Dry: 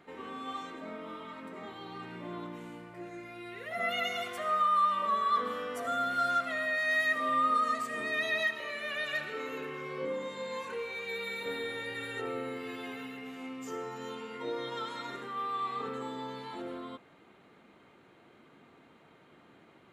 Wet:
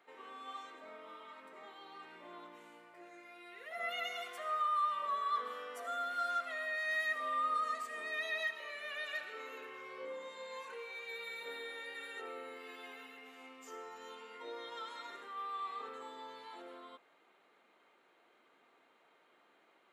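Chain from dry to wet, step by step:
high-pass filter 500 Hz 12 dB per octave
level −6.5 dB

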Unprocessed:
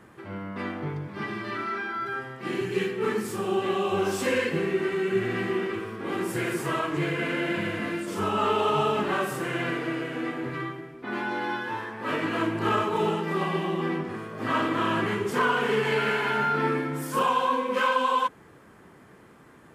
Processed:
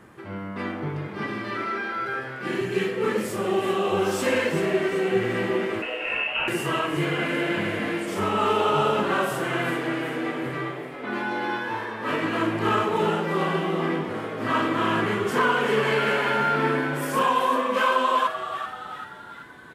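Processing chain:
0:05.82–0:06.48: voice inversion scrambler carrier 3,000 Hz
echo with shifted repeats 385 ms, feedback 52%, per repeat +120 Hz, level −10 dB
level +2 dB

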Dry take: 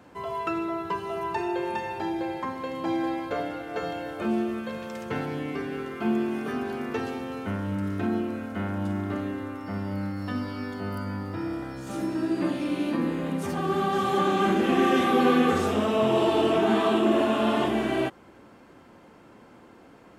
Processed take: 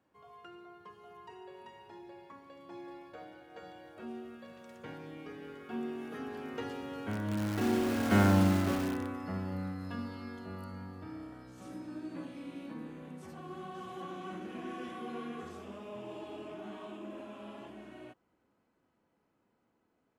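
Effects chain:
source passing by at 0:08.24, 18 m/s, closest 3.6 metres
in parallel at −7.5 dB: wrap-around overflow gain 37 dB
on the sum: level +6.5 dB

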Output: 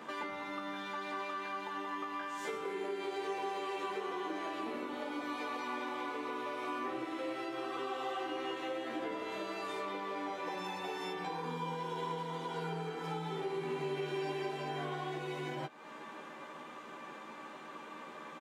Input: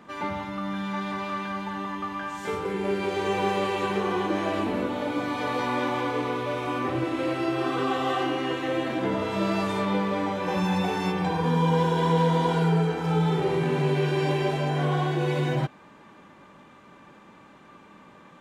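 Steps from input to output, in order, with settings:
high-pass filter 310 Hz 12 dB per octave
downward compressor 5 to 1, threshold −42 dBFS, peak gain reduction 18.5 dB
double-tracking delay 13 ms −3.5 dB
level +2.5 dB

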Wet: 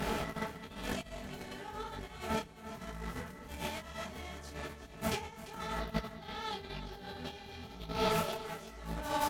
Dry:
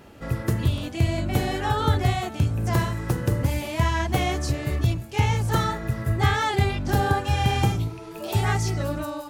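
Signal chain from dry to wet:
compressor on every frequency bin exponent 0.6
flanger 0.92 Hz, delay 1.1 ms, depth 9.4 ms, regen −73%
brickwall limiter −21 dBFS, peak gain reduction 10.5 dB
compressor whose output falls as the input rises −34 dBFS, ratio −0.5
comb filter 4.6 ms, depth 95%
harmonic generator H 7 −22 dB, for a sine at −17 dBFS
0:05.79–0:08.10: octave-band graphic EQ 2,000/4,000/8,000 Hz −4/+8/−9 dB
single-tap delay 345 ms −13.5 dB
micro pitch shift up and down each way 35 cents

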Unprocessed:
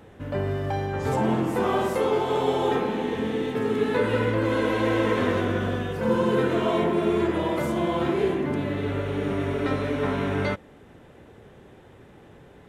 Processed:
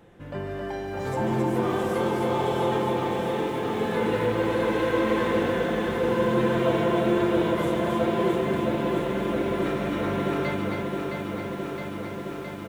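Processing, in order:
comb filter 5.8 ms, depth 42%
on a send: loudspeakers that aren't time-aligned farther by 50 metres −11 dB, 92 metres −4 dB
on the sum: feedback echo at a low word length 665 ms, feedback 80%, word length 8 bits, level −5.5 dB
level −5 dB

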